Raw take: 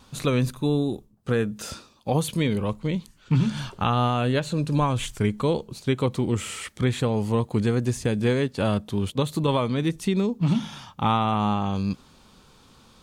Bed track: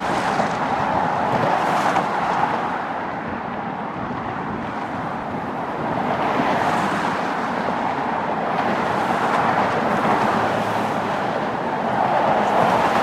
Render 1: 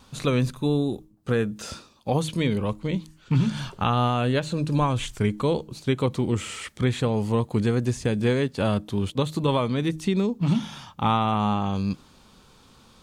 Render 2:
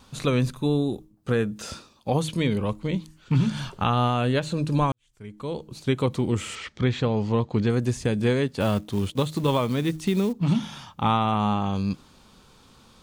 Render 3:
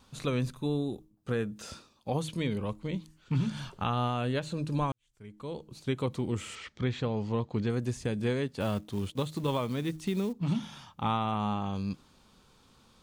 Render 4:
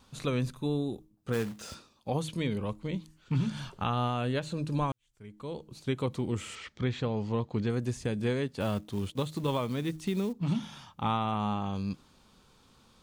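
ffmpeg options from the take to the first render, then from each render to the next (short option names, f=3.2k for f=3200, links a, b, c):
-filter_complex "[0:a]bandreject=f=156.7:t=h:w=4,bandreject=f=313.4:t=h:w=4,acrossover=split=8400[a][b];[b]acompressor=threshold=-51dB:ratio=4:attack=1:release=60[c];[a][c]amix=inputs=2:normalize=0"
-filter_complex "[0:a]asettb=1/sr,asplit=3[a][b][c];[a]atrim=end=6.554[d];[b]atrim=start=6.55:end=7.7,asetpts=PTS-STARTPTS,afade=t=in:d=0.004:c=qsin,afade=t=out:st=1.146:d=0.004:c=qsin,lowpass=f=5.9k:w=0.5412,lowpass=f=5.9k:w=1.3066[e];[c]atrim=start=7.696[f];[d][e]acrossfade=d=0.004:c1=hsin:c2=qsin[g];[g][f]acrossfade=d=0.004:c1=qsin:c2=hsin,asettb=1/sr,asplit=3[h][i][j];[h]atrim=end=8.604[k];[i]atrim=start=8.6:end=10.33,asetpts=PTS-STARTPTS,afade=t=in:d=0.004:c=qsin,afade=t=out:st=1.726:d=0.004:c=qsin,acrusher=bits=6:mode=log:mix=0:aa=0.000001[l];[j]atrim=start=10.326[m];[k][l]acrossfade=d=0.004:c1=hsin:c2=qsin[n];[n][m]acrossfade=d=0.004:c1=qsin:c2=hsin,asplit=2[o][p];[o]atrim=end=4.92,asetpts=PTS-STARTPTS,afade=t=out:st=4.916:d=0.004:c=hsin[q];[p]atrim=start=4.92,asetpts=PTS-STARTPTS,afade=t=in:d=0.91:c=qua[r];[q][r]concat=n=2:v=0:a=1"
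-af "volume=-7.5dB"
-filter_complex "[0:a]asplit=3[a][b][c];[a]afade=t=out:st=1.32:d=0.02[d];[b]acrusher=bits=3:mode=log:mix=0:aa=0.000001,afade=t=in:st=1.32:d=0.02,afade=t=out:st=1.74:d=0.02[e];[c]afade=t=in:st=1.74:d=0.02[f];[d][e][f]amix=inputs=3:normalize=0"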